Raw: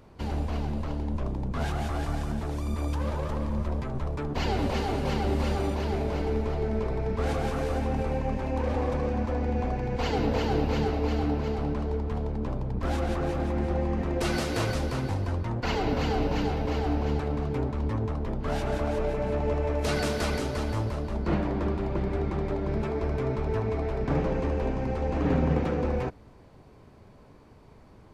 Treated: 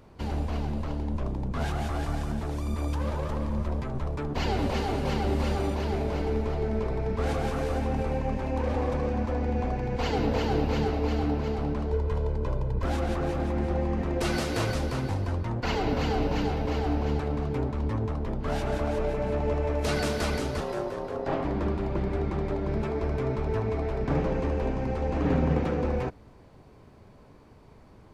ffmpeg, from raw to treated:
ffmpeg -i in.wav -filter_complex "[0:a]asettb=1/sr,asplit=3[link_01][link_02][link_03];[link_01]atrim=end=11.924[link_04];[link_02]atrim=start=11.92:end=12.84,asetpts=PTS-STARTPTS,afade=type=in:duration=0.004:curve=qsin,afade=type=out:start_time=0.916:duration=0.004:curve=qsin,aecho=1:1:2:0.62,atrim=end_sample=40572[link_05];[link_03]atrim=start=12.836[link_06];[link_04][link_05]acrossfade=duration=0.004:curve1=hsin:curve2=qsin[link_07];[link_07][link_06]acrossfade=duration=0.004:curve1=qsin:curve2=hsin,asettb=1/sr,asplit=3[link_08][link_09][link_10];[link_08]atrim=end=20.604[link_11];[link_09]atrim=start=20.6:end=21.44,asetpts=PTS-STARTPTS,afade=type=in:duration=0.004:curve=qsin,afade=type=out:start_time=0.836:duration=0.004:curve=qsin,aeval=exprs='val(0)*sin(2*PI*470*n/s)':channel_layout=same[link_12];[link_10]atrim=start=21.436[link_13];[link_11][link_12]acrossfade=duration=0.004:curve1=hsin:curve2=qsin[link_14];[link_14][link_13]acrossfade=duration=0.004:curve1=qsin:curve2=hsin" out.wav

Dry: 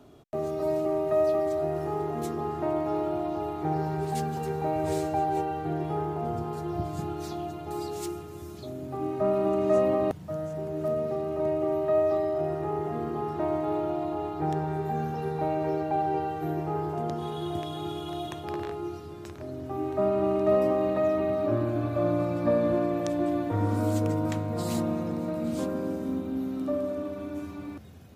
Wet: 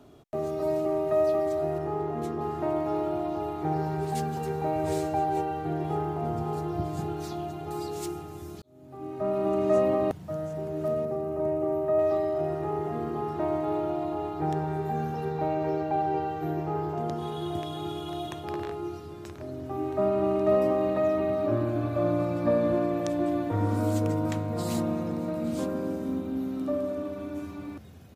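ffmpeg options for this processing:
ffmpeg -i in.wav -filter_complex "[0:a]asettb=1/sr,asplit=3[link_01][link_02][link_03];[link_01]atrim=end=1.784[link_04];[link_02]atrim=start=1.78:end=2.41,asetpts=PTS-STARTPTS,afade=type=in:duration=0.004:curve=qsin,afade=type=out:start_time=0.626:duration=0.004:curve=qsin,highshelf=frequency=4200:gain=-10[link_05];[link_03]atrim=start=2.406[link_06];[link_04][link_05]acrossfade=duration=0.004:curve1=hsin:curve2=qsin[link_07];[link_07][link_06]acrossfade=duration=0.004:curve1=qsin:curve2=hsin,asplit=2[link_08][link_09];[link_09]afade=type=in:start_time=5.28:duration=0.01,afade=type=out:start_time=6.12:duration=0.01,aecho=0:1:560|1120|1680|2240|2800|3360|3920|4480|5040|5600:0.266073|0.186251|0.130376|0.0912629|0.063884|0.0447188|0.0313032|0.0219122|0.0153386|0.010737[link_10];[link_08][link_10]amix=inputs=2:normalize=0,asettb=1/sr,asplit=3[link_11][link_12][link_13];[link_11]atrim=end=11.054[link_14];[link_12]atrim=start=11.05:end=11.99,asetpts=PTS-STARTPTS,afade=type=in:duration=0.004:curve=qsin,afade=type=out:start_time=0.936:duration=0.004:curve=qsin,equalizer=frequency=3700:width=0.67:gain=-10[link_15];[link_13]atrim=start=11.986[link_16];[link_14][link_15]acrossfade=duration=0.004:curve1=hsin:curve2=qsin[link_17];[link_17][link_16]acrossfade=duration=0.004:curve1=qsin:curve2=hsin,asettb=1/sr,asplit=3[link_18][link_19][link_20];[link_18]atrim=end=15.254[link_21];[link_19]atrim=start=15.25:end=17.01,asetpts=PTS-STARTPTS,afade=type=in:duration=0.004:curve=qsin,afade=type=out:start_time=1.756:duration=0.004:curve=qsin,equalizer=frequency=10000:width_type=o:width=0.37:gain=-12.5[link_22];[link_20]atrim=start=17.006[link_23];[link_21][link_22]acrossfade=duration=0.004:curve1=hsin:curve2=qsin[link_24];[link_24][link_23]acrossfade=duration=0.004:curve1=qsin:curve2=hsin,asplit=2[link_25][link_26];[link_25]atrim=end=8.62,asetpts=PTS-STARTPTS,afade=type=out:start_time=8.616:duration=0.004:curve=hsin[link_27];[link_26]atrim=start=8.62,asetpts=PTS-STARTPTS,afade=type=in:duration=0.95[link_28];[link_27][link_28]concat=n=2:v=0:a=1" out.wav

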